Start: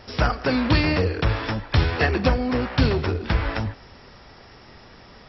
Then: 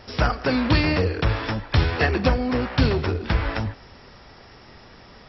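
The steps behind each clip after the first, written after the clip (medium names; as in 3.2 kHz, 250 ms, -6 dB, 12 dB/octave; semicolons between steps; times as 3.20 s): no audible change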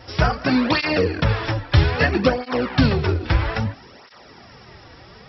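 cancelling through-zero flanger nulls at 0.61 Hz, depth 5.1 ms; trim +5.5 dB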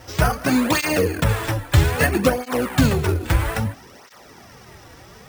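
sample-and-hold 4×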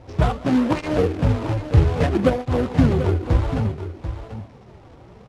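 median filter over 25 samples; distance through air 98 m; on a send: delay 739 ms -10.5 dB; on the sum: trim +1 dB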